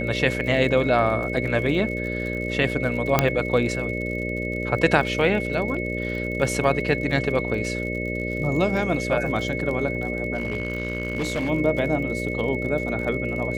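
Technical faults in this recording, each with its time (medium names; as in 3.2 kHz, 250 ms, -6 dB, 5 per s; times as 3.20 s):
buzz 60 Hz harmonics 10 -29 dBFS
crackle 54 per s -32 dBFS
whine 2.2 kHz -30 dBFS
3.19 s: pop -2 dBFS
10.34–11.50 s: clipped -21 dBFS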